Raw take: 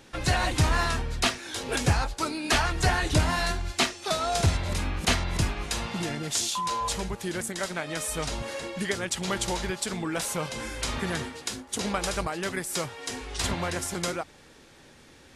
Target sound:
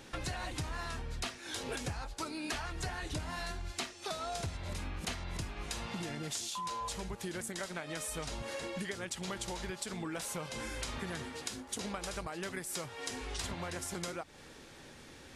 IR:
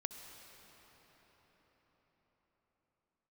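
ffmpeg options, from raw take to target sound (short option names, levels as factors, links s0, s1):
-af "acompressor=threshold=0.0141:ratio=6"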